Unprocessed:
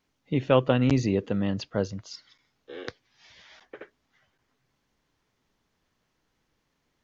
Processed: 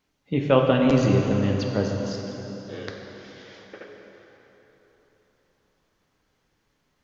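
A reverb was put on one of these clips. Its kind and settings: plate-style reverb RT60 4 s, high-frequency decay 0.75×, DRR 0.5 dB; gain +1 dB

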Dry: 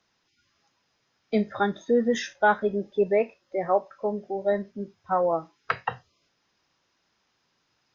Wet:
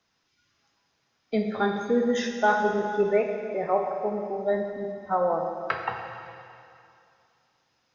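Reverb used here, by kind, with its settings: plate-style reverb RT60 2.5 s, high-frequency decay 1×, DRR 2.5 dB; gain -2 dB

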